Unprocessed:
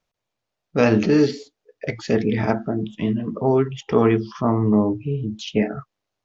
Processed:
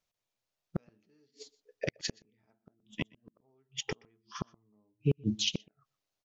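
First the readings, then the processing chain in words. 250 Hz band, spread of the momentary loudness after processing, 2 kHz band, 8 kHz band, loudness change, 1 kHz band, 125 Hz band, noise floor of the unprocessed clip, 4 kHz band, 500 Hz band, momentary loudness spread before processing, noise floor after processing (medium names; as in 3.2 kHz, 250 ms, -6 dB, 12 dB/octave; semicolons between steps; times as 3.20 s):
-20.0 dB, 18 LU, -14.0 dB, no reading, -15.5 dB, -24.5 dB, -14.0 dB, -82 dBFS, -1.0 dB, -22.0 dB, 10 LU, under -85 dBFS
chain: inverted gate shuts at -16 dBFS, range -42 dB; treble shelf 3 kHz +9 dB; delay 123 ms -20.5 dB; upward expansion 1.5:1, over -42 dBFS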